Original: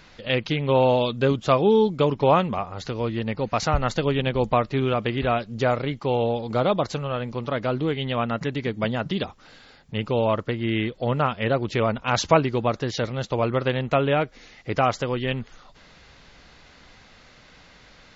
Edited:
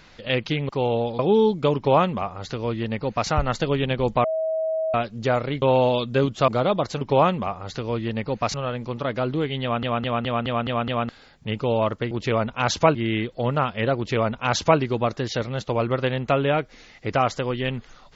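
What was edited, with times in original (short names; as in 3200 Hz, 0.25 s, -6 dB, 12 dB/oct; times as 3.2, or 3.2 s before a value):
0.69–1.55 swap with 5.98–6.48
2.12–3.65 copy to 7.01
4.6–5.3 bleep 640 Hz -21.5 dBFS
8.09 stutter in place 0.21 s, 7 plays
11.59–12.43 copy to 10.58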